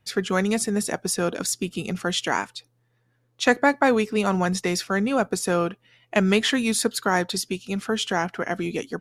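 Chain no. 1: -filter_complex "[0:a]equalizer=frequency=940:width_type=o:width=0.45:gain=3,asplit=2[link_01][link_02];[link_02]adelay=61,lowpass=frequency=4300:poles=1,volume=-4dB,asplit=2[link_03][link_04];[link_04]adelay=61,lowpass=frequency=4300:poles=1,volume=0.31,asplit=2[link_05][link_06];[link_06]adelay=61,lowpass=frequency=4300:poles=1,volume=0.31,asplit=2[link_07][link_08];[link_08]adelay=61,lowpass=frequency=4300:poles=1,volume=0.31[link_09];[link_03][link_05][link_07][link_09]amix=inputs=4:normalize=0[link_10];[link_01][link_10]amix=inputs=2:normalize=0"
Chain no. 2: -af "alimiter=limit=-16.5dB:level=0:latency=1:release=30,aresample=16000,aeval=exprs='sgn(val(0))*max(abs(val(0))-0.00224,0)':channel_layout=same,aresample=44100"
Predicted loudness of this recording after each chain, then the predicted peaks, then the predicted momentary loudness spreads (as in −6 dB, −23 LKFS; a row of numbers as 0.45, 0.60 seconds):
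−22.0, −27.5 LKFS; −3.5, −16.0 dBFS; 8, 5 LU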